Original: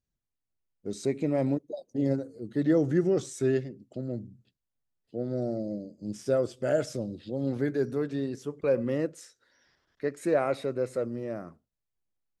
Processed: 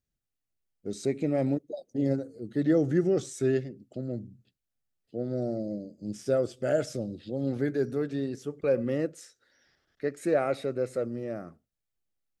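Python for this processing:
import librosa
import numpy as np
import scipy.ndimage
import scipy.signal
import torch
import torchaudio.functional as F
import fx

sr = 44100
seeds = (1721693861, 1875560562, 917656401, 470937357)

y = fx.notch(x, sr, hz=1000.0, q=5.0)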